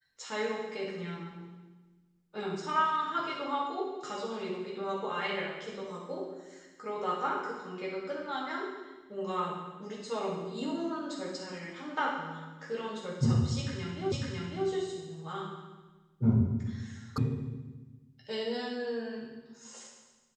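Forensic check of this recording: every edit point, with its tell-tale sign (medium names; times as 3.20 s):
14.12 s: repeat of the last 0.55 s
17.18 s: sound stops dead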